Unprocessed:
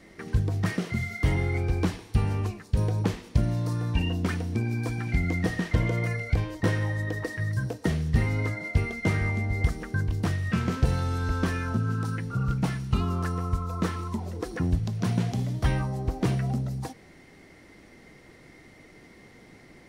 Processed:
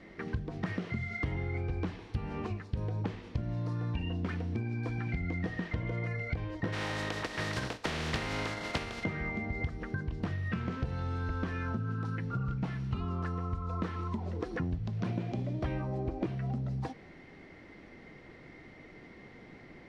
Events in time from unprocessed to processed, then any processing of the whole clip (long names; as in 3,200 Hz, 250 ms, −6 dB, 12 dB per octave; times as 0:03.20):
0:06.72–0:09.03: compressing power law on the bin magnitudes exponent 0.37
0:15.06–0:16.27: hollow resonant body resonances 340/570/2,400 Hz, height 12 dB
whole clip: low-pass filter 3,400 Hz 12 dB per octave; mains-hum notches 50/100 Hz; downward compressor, threshold −31 dBFS